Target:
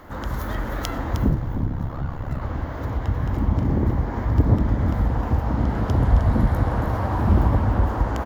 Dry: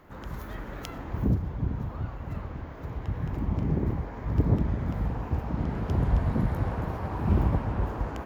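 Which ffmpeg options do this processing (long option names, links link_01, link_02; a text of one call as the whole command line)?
ffmpeg -i in.wav -filter_complex "[0:a]equalizer=frequency=160:width_type=o:width=0.33:gain=-9,equalizer=frequency=400:width_type=o:width=0.33:gain=-5,equalizer=frequency=2500:width_type=o:width=0.33:gain=-7,asplit=2[link_01][link_02];[link_02]acompressor=threshold=-34dB:ratio=6,volume=1dB[link_03];[link_01][link_03]amix=inputs=2:normalize=0,asettb=1/sr,asplit=3[link_04][link_05][link_06];[link_04]atrim=end=1.294[link_07];[link_05]atrim=start=1.29:end=2.42,asetpts=PTS-STARTPTS,afade=type=in:duration=0.004:curve=qsin,afade=type=out:start_time=1.126:duration=0.004:curve=qsin,aeval=exprs='val(0)*sin(2*PI*34*n/s)':channel_layout=same[link_08];[link_06]atrim=start=2.416[link_09];[link_07][link_08]acrossfade=duration=0.004:curve1=hsin:curve2=qsin[link_10];[link_10][link_09]acrossfade=duration=0.004:curve1=qsin:curve2=hsin,aecho=1:1:309:0.335,volume=5dB" out.wav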